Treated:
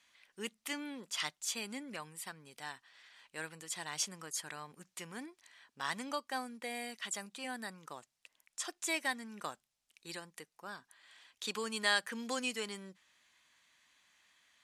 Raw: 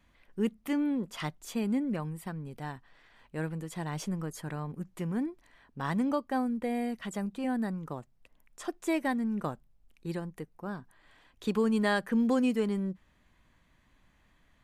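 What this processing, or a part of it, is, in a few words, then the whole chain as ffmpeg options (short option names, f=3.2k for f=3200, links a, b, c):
piezo pickup straight into a mixer: -af "lowpass=6.9k,aderivative,volume=12.5dB"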